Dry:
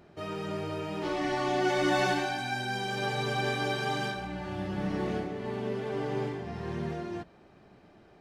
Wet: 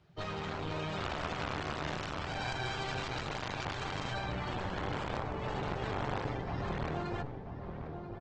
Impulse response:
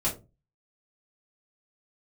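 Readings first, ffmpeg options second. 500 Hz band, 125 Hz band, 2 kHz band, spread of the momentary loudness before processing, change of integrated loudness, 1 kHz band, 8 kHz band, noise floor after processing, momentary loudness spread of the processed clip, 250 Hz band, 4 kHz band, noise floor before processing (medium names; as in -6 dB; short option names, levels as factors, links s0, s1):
-7.5 dB, -1.5 dB, -6.0 dB, 10 LU, -6.0 dB, -4.5 dB, -6.5 dB, -44 dBFS, 5 LU, -7.5 dB, -4.5 dB, -57 dBFS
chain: -filter_complex "[0:a]aeval=exprs='0.178*(cos(1*acos(clip(val(0)/0.178,-1,1)))-cos(1*PI/2))+0.0282*(cos(3*acos(clip(val(0)/0.178,-1,1)))-cos(3*PI/2))+0.0891*(cos(6*acos(clip(val(0)/0.178,-1,1)))-cos(6*PI/2))+0.0398*(cos(7*acos(clip(val(0)/0.178,-1,1)))-cos(7*PI/2))+0.0282*(cos(8*acos(clip(val(0)/0.178,-1,1)))-cos(8*PI/2))':c=same,acrossover=split=2900[s0][s1];[s1]acompressor=threshold=0.00447:ratio=4:attack=1:release=60[s2];[s0][s2]amix=inputs=2:normalize=0,equalizer=f=125:t=o:w=1:g=4,equalizer=f=250:t=o:w=1:g=-10,equalizer=f=500:t=o:w=1:g=-3,equalizer=f=4000:t=o:w=1:g=6,acrossover=split=120|1000[s3][s4][s5];[s3]acompressor=threshold=0.0251:ratio=4[s6];[s4]acompressor=threshold=0.0158:ratio=4[s7];[s5]acompressor=threshold=0.0126:ratio=4[s8];[s6][s7][s8]amix=inputs=3:normalize=0,afftdn=nr=14:nf=-44,aresample=16000,aeval=exprs='clip(val(0),-1,0.0119)':c=same,aresample=44100,asplit=2[s9][s10];[s10]adelay=986,lowpass=f=860:p=1,volume=0.531,asplit=2[s11][s12];[s12]adelay=986,lowpass=f=860:p=1,volume=0.55,asplit=2[s13][s14];[s14]adelay=986,lowpass=f=860:p=1,volume=0.55,asplit=2[s15][s16];[s16]adelay=986,lowpass=f=860:p=1,volume=0.55,asplit=2[s17][s18];[s18]adelay=986,lowpass=f=860:p=1,volume=0.55,asplit=2[s19][s20];[s20]adelay=986,lowpass=f=860:p=1,volume=0.55,asplit=2[s21][s22];[s22]adelay=986,lowpass=f=860:p=1,volume=0.55[s23];[s9][s11][s13][s15][s17][s19][s21][s23]amix=inputs=8:normalize=0,volume=1.78" -ar 48000 -c:a libopus -b:a 16k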